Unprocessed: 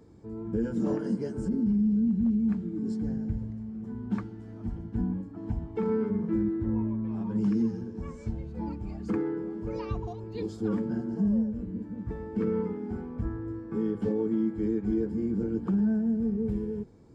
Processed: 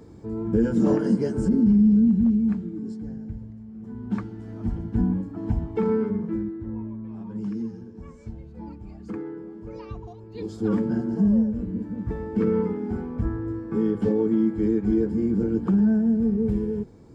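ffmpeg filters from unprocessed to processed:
ffmpeg -i in.wav -af "volume=28.5dB,afade=type=out:start_time=1.94:duration=1.02:silence=0.266073,afade=type=in:start_time=3.67:duration=0.99:silence=0.298538,afade=type=out:start_time=5.64:duration=0.9:silence=0.281838,afade=type=in:start_time=10.29:duration=0.45:silence=0.316228" out.wav

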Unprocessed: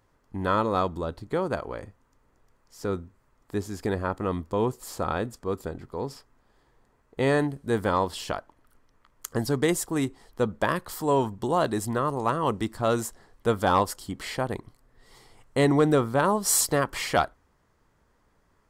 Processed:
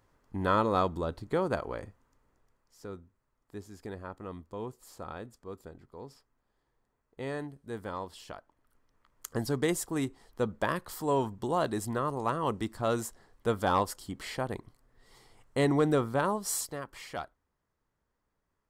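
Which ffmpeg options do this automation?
ffmpeg -i in.wav -af "volume=6.5dB,afade=type=out:start_time=1.77:duration=1.12:silence=0.266073,afade=type=in:start_time=8.35:duration=0.93:silence=0.375837,afade=type=out:start_time=16.15:duration=0.59:silence=0.316228" out.wav

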